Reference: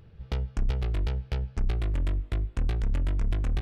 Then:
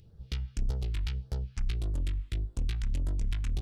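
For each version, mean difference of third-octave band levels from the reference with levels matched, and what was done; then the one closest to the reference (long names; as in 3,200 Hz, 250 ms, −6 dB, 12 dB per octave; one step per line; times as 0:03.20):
5.0 dB: high-shelf EQ 2,000 Hz +9 dB
all-pass phaser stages 2, 1.7 Hz, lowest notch 440–2,400 Hz
level −5 dB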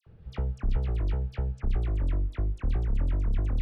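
7.0 dB: high-shelf EQ 2,300 Hz −11.5 dB
all-pass dispersion lows, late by 67 ms, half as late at 1,900 Hz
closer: first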